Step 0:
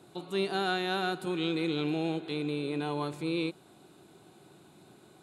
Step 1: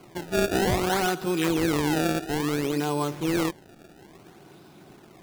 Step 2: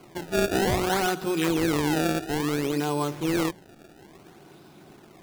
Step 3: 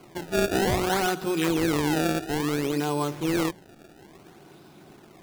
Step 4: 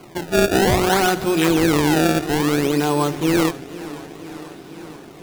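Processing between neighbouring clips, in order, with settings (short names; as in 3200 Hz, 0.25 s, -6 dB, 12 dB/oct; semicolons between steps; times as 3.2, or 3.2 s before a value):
decimation with a swept rate 24×, swing 160% 0.59 Hz; gain +6.5 dB
notches 60/120/180 Hz
nothing audible
warbling echo 0.485 s, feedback 71%, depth 127 cents, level -17.5 dB; gain +7.5 dB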